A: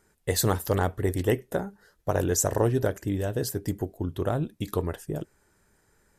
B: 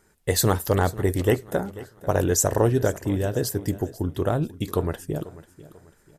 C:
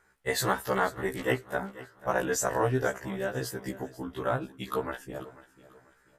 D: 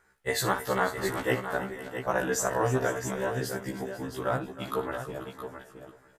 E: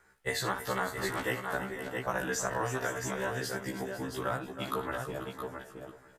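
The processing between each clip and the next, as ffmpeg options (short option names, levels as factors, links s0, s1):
-af "aecho=1:1:491|982|1473:0.126|0.0453|0.0163,volume=1.5"
-af "equalizer=f=1500:w=0.54:g=13,afftfilt=real='re*1.73*eq(mod(b,3),0)':imag='im*1.73*eq(mod(b,3),0)':win_size=2048:overlap=0.75,volume=0.376"
-af "aecho=1:1:59|316|502|668:0.237|0.188|0.1|0.355"
-filter_complex "[0:a]acrossover=split=260|930|6500[s0][s1][s2][s3];[s0]acompressor=threshold=0.00794:ratio=4[s4];[s1]acompressor=threshold=0.0112:ratio=4[s5];[s2]acompressor=threshold=0.02:ratio=4[s6];[s3]acompressor=threshold=0.00447:ratio=4[s7];[s4][s5][s6][s7]amix=inputs=4:normalize=0,volume=1.19"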